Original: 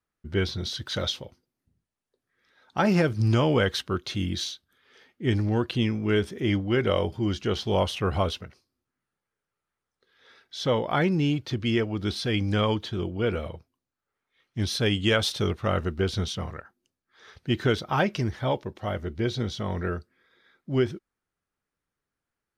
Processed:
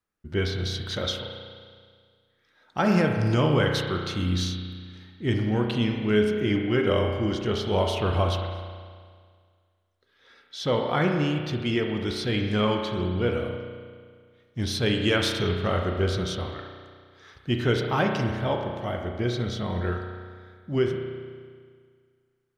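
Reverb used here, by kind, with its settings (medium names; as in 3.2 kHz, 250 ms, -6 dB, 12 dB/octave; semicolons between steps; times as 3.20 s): spring tank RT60 1.9 s, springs 33 ms, chirp 35 ms, DRR 2.5 dB; trim -1 dB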